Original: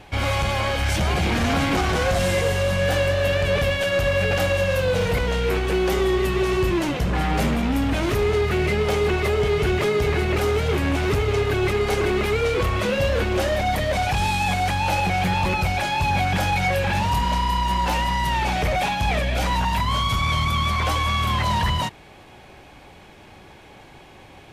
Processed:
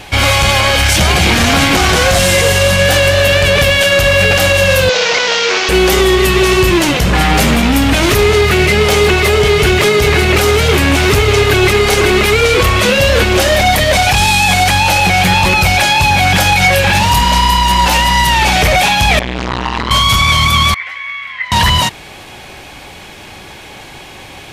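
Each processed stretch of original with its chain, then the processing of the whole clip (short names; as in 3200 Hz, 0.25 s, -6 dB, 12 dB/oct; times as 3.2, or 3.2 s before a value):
4.89–5.69 delta modulation 32 kbps, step -25.5 dBFS + HPF 490 Hz
19.19–19.91 CVSD 64 kbps + air absorption 150 m + core saturation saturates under 500 Hz
20.74–21.52 band-pass 2000 Hz, Q 9.6 + tilt -1.5 dB/oct + doubler 22 ms -13 dB
whole clip: high shelf 2000 Hz +10 dB; maximiser +11.5 dB; gain -1 dB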